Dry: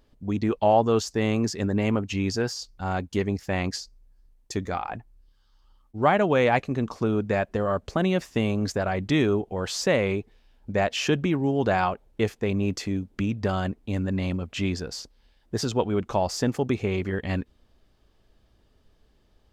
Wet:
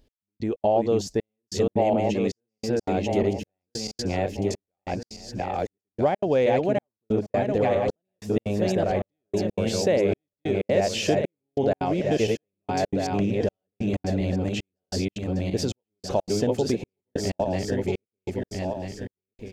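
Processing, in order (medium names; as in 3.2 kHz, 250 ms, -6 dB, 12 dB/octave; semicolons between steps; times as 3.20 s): backward echo that repeats 646 ms, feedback 49%, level -2 dB; compression 2.5:1, threshold -33 dBFS, peak gain reduction 13 dB; dynamic bell 590 Hz, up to +8 dB, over -46 dBFS, Q 0.93; level rider gain up to 6 dB; peaking EQ 1.2 kHz -12 dB 0.94 oct; delay 1031 ms -24 dB; trance gate "x....xx.xxxxxx" 188 bpm -60 dB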